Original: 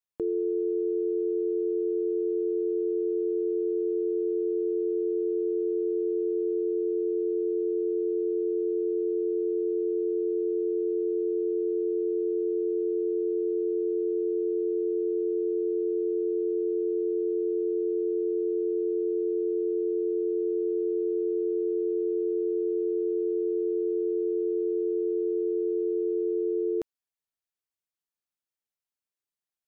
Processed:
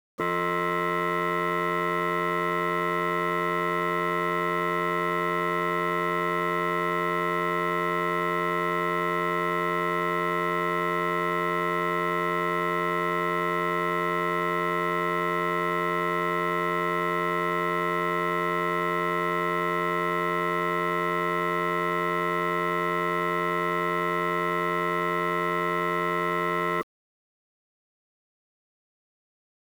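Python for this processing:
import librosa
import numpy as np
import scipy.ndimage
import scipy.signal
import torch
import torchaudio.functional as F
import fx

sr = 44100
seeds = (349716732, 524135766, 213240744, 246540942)

y = scipy.signal.sosfilt(scipy.signal.butter(2, 120.0, 'highpass', fs=sr, output='sos'), x)
y = fx.cheby_harmonics(y, sr, harmonics=(3,), levels_db=(-8,), full_scale_db=-21.0)
y = fx.spec_topn(y, sr, count=16)
y = fx.fold_sine(y, sr, drive_db=9, ceiling_db=-20.0)
y = fx.quant_dither(y, sr, seeds[0], bits=8, dither='none')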